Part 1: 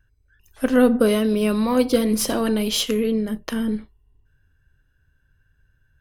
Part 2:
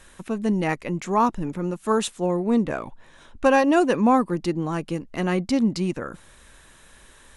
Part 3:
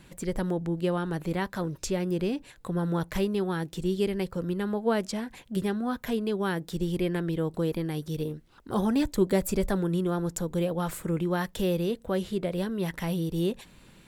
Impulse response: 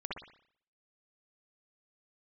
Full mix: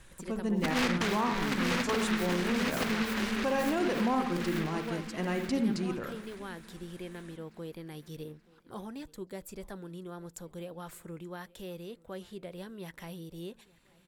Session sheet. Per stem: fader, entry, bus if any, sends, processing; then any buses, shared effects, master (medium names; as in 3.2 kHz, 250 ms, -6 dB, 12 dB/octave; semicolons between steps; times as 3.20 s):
-4.0 dB, 0.00 s, no send, echo send -13 dB, tilt EQ -1.5 dB/octave; delay time shaken by noise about 1.6 kHz, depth 0.38 ms; auto duck -12 dB, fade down 1.00 s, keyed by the second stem
-11.5 dB, 0.00 s, send -3.5 dB, echo send -22.5 dB, none
-11.0 dB, 0.00 s, no send, echo send -23.5 dB, bass shelf 470 Hz -5.5 dB; gain riding within 4 dB 0.5 s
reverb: on, pre-delay 56 ms
echo: feedback delay 878 ms, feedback 43%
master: peak limiter -20.5 dBFS, peak gain reduction 7.5 dB